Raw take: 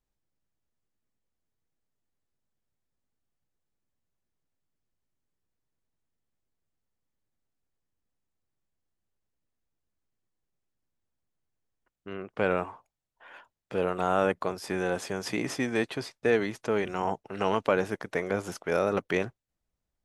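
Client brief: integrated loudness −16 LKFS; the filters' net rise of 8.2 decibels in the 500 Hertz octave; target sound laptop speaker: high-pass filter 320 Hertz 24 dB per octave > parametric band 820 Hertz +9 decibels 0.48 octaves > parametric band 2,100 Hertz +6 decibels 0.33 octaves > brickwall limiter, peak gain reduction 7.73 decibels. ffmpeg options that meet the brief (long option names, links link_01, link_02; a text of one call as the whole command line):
ffmpeg -i in.wav -af "highpass=frequency=320:width=0.5412,highpass=frequency=320:width=1.3066,equalizer=frequency=500:width_type=o:gain=8.5,equalizer=frequency=820:width_type=o:width=0.48:gain=9,equalizer=frequency=2100:width_type=o:width=0.33:gain=6,volume=9.5dB,alimiter=limit=-3.5dB:level=0:latency=1" out.wav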